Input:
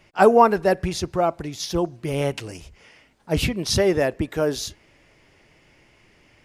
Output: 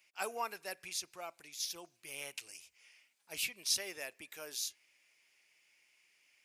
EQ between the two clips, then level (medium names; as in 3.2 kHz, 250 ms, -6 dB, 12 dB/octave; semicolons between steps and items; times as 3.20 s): differentiator; peaking EQ 2.4 kHz +8 dB 0.3 oct; -5.5 dB